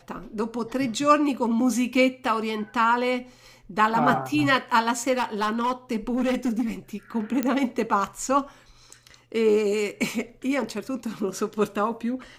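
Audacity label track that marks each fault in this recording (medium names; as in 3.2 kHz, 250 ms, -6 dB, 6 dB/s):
5.120000	6.620000	clipped -20 dBFS
7.430000	7.430000	pop -11 dBFS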